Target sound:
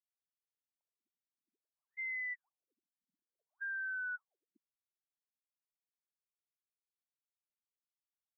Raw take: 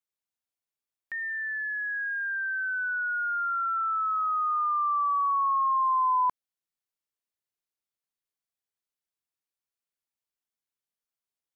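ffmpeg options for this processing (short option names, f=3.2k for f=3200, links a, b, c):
-af "agate=range=-33dB:threshold=-28dB:ratio=3:detection=peak,acompressor=threshold=-26dB:ratio=6,asoftclip=type=hard:threshold=-39.5dB,asetrate=60858,aresample=44100,afftfilt=real='re*between(b*sr/1024,200*pow(1800/200,0.5+0.5*sin(2*PI*0.58*pts/sr))/1.41,200*pow(1800/200,0.5+0.5*sin(2*PI*0.58*pts/sr))*1.41)':imag='im*between(b*sr/1024,200*pow(1800/200,0.5+0.5*sin(2*PI*0.58*pts/sr))/1.41,200*pow(1800/200,0.5+0.5*sin(2*PI*0.58*pts/sr))*1.41)':win_size=1024:overlap=0.75,volume=1.5dB"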